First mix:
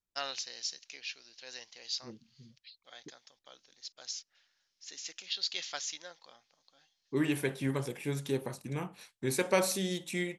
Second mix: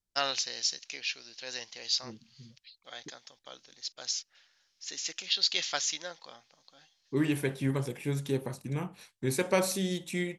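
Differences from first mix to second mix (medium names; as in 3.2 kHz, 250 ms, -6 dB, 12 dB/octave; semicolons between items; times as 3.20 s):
first voice +7.0 dB; master: add bass shelf 190 Hz +6.5 dB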